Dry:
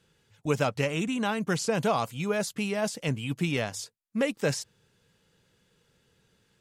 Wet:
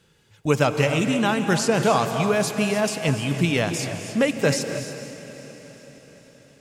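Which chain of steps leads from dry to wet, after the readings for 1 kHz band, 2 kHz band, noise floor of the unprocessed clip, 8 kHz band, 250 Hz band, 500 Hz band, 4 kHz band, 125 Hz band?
+7.5 dB, +7.5 dB, -70 dBFS, +7.5 dB, +7.5 dB, +7.5 dB, +7.5 dB, +7.5 dB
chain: on a send: diffused feedback echo 0.487 s, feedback 52%, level -14 dB; on the sum: non-linear reverb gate 0.33 s rising, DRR 7.5 dB; gain +6.5 dB

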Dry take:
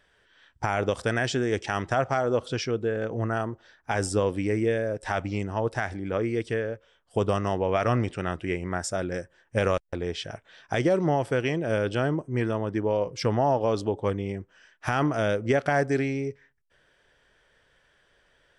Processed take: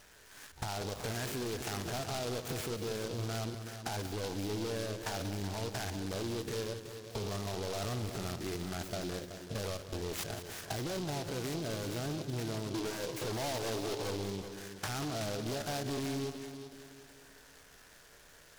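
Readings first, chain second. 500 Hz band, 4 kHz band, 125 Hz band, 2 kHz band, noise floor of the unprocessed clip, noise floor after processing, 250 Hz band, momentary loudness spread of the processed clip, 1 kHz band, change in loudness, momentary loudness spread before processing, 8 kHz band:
-12.5 dB, -1.5 dB, -9.0 dB, -12.0 dB, -66 dBFS, -58 dBFS, -10.0 dB, 13 LU, -12.5 dB, -10.5 dB, 8 LU, -0.5 dB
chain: stepped spectrum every 50 ms; in parallel at +0.5 dB: limiter -24 dBFS, peak gain reduction 11.5 dB; on the sum: spectral gain 12.7–14.23, 290–1700 Hz +7 dB; overloaded stage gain 23 dB; compressor 6:1, threshold -37 dBFS, peak gain reduction 11.5 dB; resonant high shelf 4900 Hz -10 dB, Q 1.5; notch 530 Hz, Q 12; multi-head echo 0.188 s, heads first and second, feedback 45%, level -12 dB; noise-modulated delay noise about 3900 Hz, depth 0.099 ms

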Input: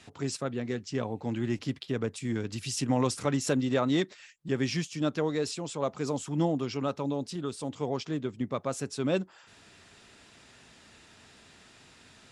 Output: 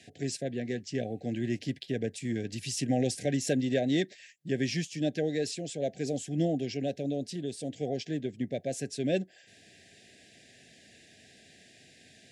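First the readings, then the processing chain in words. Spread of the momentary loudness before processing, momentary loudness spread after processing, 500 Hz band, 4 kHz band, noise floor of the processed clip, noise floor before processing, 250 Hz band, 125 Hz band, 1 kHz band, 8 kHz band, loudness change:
7 LU, 7 LU, -0.5 dB, -1.0 dB, -58 dBFS, -57 dBFS, -1.0 dB, -1.5 dB, -7.0 dB, -0.5 dB, -1.0 dB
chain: HPF 100 Hz; de-esser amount 55%; Chebyshev band-stop 760–1600 Hz, order 5

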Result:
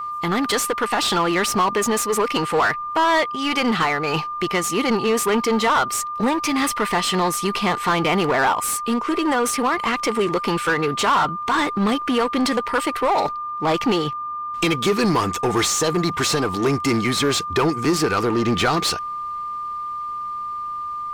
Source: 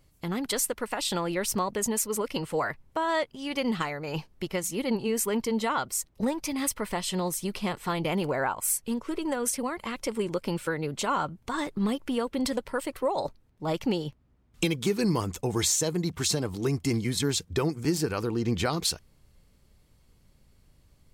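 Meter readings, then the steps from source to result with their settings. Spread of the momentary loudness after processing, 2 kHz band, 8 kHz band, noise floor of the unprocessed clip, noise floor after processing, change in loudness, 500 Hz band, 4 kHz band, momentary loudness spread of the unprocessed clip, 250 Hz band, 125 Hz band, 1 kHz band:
8 LU, +12.5 dB, +4.0 dB, -63 dBFS, -29 dBFS, +8.5 dB, +8.5 dB, +9.5 dB, 5 LU, +7.5 dB, +4.5 dB, +13.5 dB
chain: bell 560 Hz -9.5 dB 0.23 oct; overdrive pedal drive 19 dB, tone 2400 Hz, clips at -12 dBFS; whine 1200 Hz -32 dBFS; in parallel at -10 dB: wavefolder -26 dBFS; on the sum: gain +4 dB

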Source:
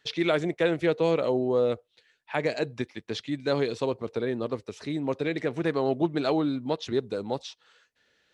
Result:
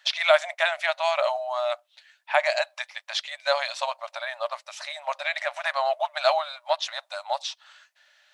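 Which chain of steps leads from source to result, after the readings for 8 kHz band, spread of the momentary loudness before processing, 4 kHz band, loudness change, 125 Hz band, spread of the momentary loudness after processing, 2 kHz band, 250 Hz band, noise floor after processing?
n/a, 9 LU, +8.5 dB, +1.5 dB, under -40 dB, 11 LU, +8.5 dB, under -40 dB, -69 dBFS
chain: brick-wall FIR high-pass 560 Hz; gain +8.5 dB

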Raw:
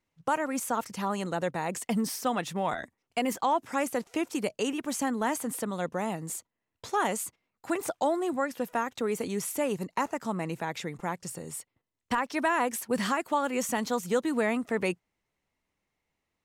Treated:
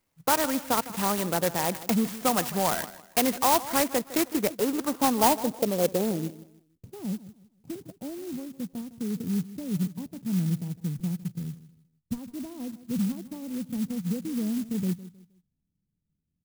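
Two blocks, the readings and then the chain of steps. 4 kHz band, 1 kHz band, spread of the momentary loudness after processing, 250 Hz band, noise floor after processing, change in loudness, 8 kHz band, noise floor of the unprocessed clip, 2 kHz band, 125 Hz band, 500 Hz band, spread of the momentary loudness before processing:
+5.0 dB, +0.5 dB, 14 LU, +3.5 dB, -80 dBFS, +3.0 dB, +3.5 dB, -84 dBFS, -3.0 dB, +8.0 dB, 0.0 dB, 7 LU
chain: low-pass sweep 3000 Hz -> 170 Hz, 3.99–6.92; on a send: feedback echo 0.157 s, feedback 31%, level -16 dB; on the sum: clock jitter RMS 0.1 ms; gain +3.5 dB

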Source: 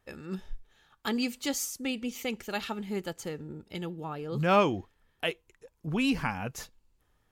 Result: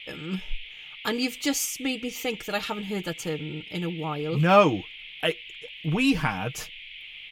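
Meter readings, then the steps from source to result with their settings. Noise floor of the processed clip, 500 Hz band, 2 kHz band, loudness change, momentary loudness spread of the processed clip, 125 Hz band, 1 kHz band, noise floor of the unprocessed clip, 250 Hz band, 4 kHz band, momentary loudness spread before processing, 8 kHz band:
-44 dBFS, +5.5 dB, +6.0 dB, +5.0 dB, 18 LU, +7.0 dB, +5.5 dB, -73 dBFS, +4.5 dB, +6.5 dB, 16 LU, +5.5 dB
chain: comb 6.5 ms, depth 54%; band noise 2100–3400 Hz -47 dBFS; gain +4 dB

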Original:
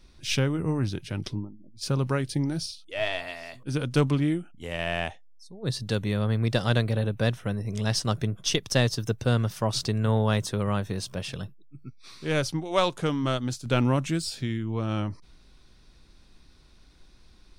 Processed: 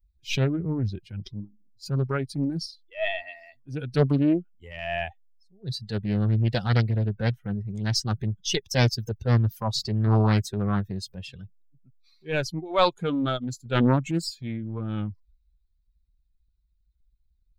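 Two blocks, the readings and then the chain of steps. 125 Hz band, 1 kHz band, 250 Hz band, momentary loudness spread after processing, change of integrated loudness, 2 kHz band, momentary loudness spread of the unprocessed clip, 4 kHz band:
+1.5 dB, +1.5 dB, +1.5 dB, 15 LU, +1.5 dB, -0.5 dB, 11 LU, -1.0 dB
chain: per-bin expansion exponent 2; bell 9500 Hz -13.5 dB 0.46 oct; transient shaper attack -7 dB, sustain +1 dB; Doppler distortion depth 0.49 ms; gain +7.5 dB

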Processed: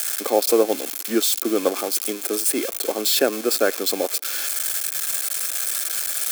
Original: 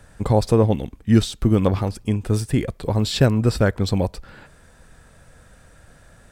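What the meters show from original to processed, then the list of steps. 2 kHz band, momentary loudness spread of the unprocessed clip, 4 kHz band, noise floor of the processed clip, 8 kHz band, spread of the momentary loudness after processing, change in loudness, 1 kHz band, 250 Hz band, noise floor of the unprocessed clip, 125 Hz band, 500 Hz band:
+4.0 dB, 7 LU, +6.5 dB, -32 dBFS, +15.5 dB, 4 LU, -0.5 dB, 0.0 dB, -6.0 dB, -52 dBFS, under -30 dB, +1.5 dB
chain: switching spikes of -14 dBFS; steep high-pass 290 Hz 36 dB/oct; notch comb 960 Hz; gain +1.5 dB

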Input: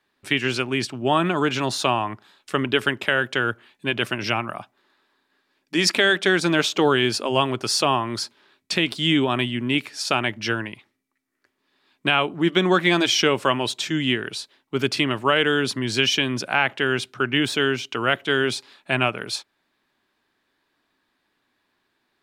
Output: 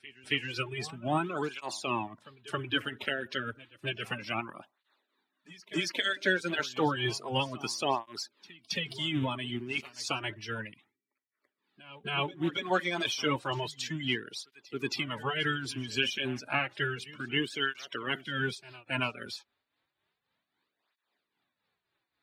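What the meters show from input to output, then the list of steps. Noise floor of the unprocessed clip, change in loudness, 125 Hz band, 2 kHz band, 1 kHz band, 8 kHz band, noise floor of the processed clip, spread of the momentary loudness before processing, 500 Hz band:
-73 dBFS, -11.0 dB, -9.0 dB, -10.0 dB, -10.5 dB, -12.5 dB, under -85 dBFS, 9 LU, -12.5 dB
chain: bin magnitudes rounded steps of 30 dB; tremolo triangle 3.7 Hz, depth 65%; reverse echo 0.273 s -19 dB; tape flanging out of phase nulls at 0.31 Hz, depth 6.9 ms; gain -4.5 dB

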